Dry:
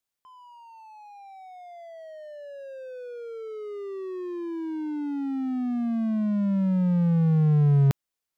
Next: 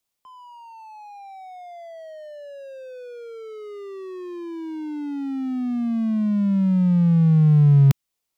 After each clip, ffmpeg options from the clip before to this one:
-filter_complex "[0:a]acrossover=split=260|1000[a][b][c];[b]acompressor=threshold=-45dB:ratio=6[d];[a][d][c]amix=inputs=3:normalize=0,equalizer=f=1.6k:t=o:w=0.52:g=-5.5,volume=6dB"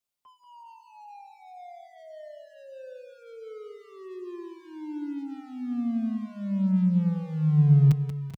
-filter_complex "[0:a]asplit=2[a][b];[b]aecho=0:1:184|390|427:0.355|0.141|0.282[c];[a][c]amix=inputs=2:normalize=0,asplit=2[d][e];[e]adelay=5.3,afreqshift=0.67[f];[d][f]amix=inputs=2:normalize=1,volume=-4.5dB"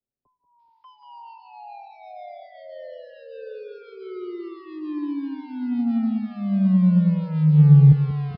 -filter_complex "[0:a]acrossover=split=550[a][b];[b]adelay=590[c];[a][c]amix=inputs=2:normalize=0,acrossover=split=230|290|620[d][e][f][g];[e]asoftclip=type=tanh:threshold=-36dB[h];[d][h][f][g]amix=inputs=4:normalize=0,aresample=11025,aresample=44100,volume=7dB"

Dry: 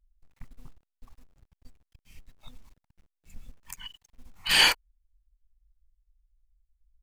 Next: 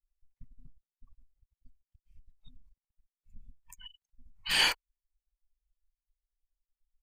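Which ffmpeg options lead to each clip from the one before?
-af "afftdn=nr=22:nf=-42,volume=-6dB"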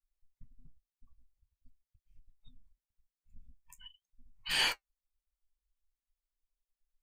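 -af "flanger=delay=7.4:depth=9.1:regen=-50:speed=0.45:shape=sinusoidal"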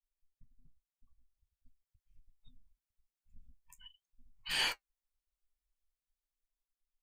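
-af "dynaudnorm=f=530:g=5:m=5dB,volume=-8dB"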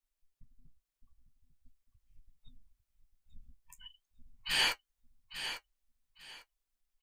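-af "aecho=1:1:849|1698|2547:0.316|0.0759|0.0182,volume=3.5dB"

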